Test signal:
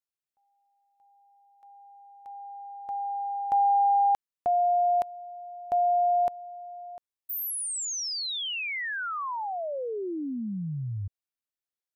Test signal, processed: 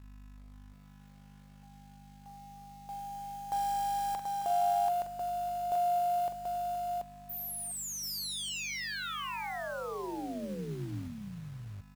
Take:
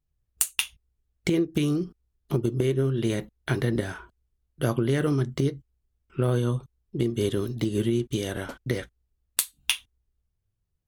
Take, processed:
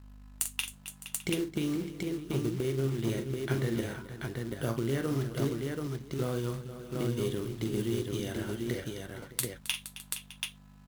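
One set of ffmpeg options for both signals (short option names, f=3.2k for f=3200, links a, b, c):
-af "aeval=exprs='val(0)+0.00794*(sin(2*PI*50*n/s)+sin(2*PI*2*50*n/s)/2+sin(2*PI*3*50*n/s)/3+sin(2*PI*4*50*n/s)/4+sin(2*PI*5*50*n/s)/5)':c=same,acrusher=bits=4:mode=log:mix=0:aa=0.000001,aecho=1:1:44|267|468|610|734:0.398|0.188|0.237|0.133|0.668,volume=-8dB"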